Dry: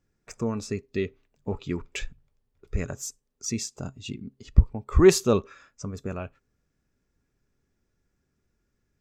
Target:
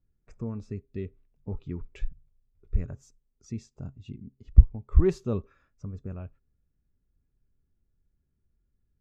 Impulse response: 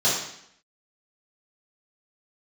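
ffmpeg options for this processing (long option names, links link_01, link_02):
-af "aemphasis=mode=reproduction:type=riaa,volume=-13.5dB"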